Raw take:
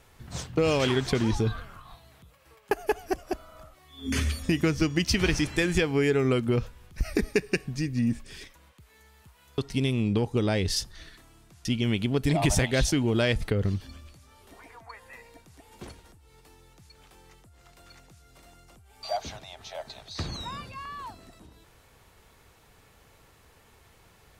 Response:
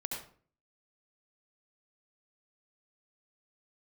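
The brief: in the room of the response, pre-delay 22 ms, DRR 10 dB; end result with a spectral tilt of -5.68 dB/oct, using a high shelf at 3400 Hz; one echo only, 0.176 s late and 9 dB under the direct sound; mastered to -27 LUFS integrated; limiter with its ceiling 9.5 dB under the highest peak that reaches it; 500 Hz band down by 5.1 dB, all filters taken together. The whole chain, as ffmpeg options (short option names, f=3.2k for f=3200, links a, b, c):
-filter_complex "[0:a]equalizer=f=500:t=o:g=-6.5,highshelf=f=3.4k:g=-8.5,alimiter=limit=-20.5dB:level=0:latency=1,aecho=1:1:176:0.355,asplit=2[a][b];[1:a]atrim=start_sample=2205,adelay=22[c];[b][c]afir=irnorm=-1:irlink=0,volume=-11.5dB[d];[a][d]amix=inputs=2:normalize=0,volume=5.5dB"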